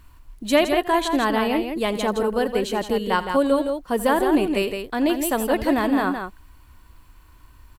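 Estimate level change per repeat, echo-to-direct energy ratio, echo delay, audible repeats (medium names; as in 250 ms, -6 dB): +9.5 dB, -6.0 dB, 84 ms, 2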